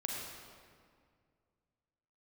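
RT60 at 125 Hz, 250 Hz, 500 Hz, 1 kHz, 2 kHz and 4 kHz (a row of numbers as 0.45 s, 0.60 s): 2.8 s, 2.4 s, 2.2 s, 2.0 s, 1.7 s, 1.4 s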